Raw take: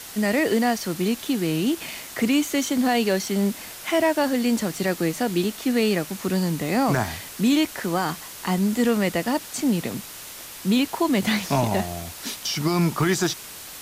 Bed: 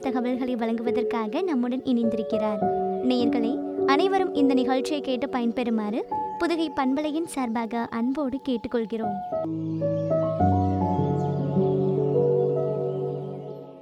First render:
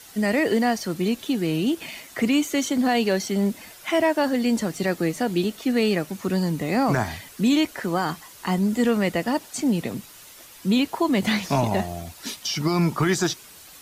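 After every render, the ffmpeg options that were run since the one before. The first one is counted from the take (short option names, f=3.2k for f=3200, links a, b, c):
-af "afftdn=nr=9:nf=-39"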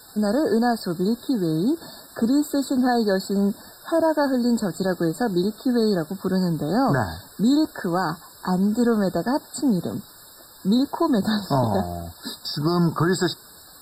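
-filter_complex "[0:a]asplit=2[a][b];[b]asoftclip=type=tanh:threshold=-23dB,volume=-11dB[c];[a][c]amix=inputs=2:normalize=0,afftfilt=real='re*eq(mod(floor(b*sr/1024/1800),2),0)':imag='im*eq(mod(floor(b*sr/1024/1800),2),0)':win_size=1024:overlap=0.75"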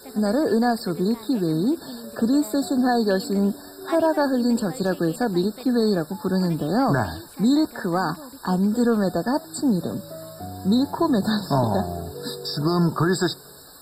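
-filter_complex "[1:a]volume=-14.5dB[a];[0:a][a]amix=inputs=2:normalize=0"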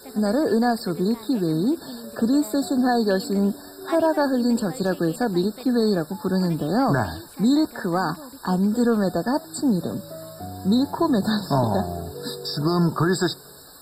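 -af anull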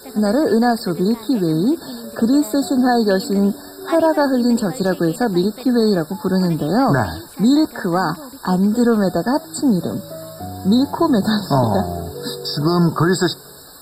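-af "volume=5dB"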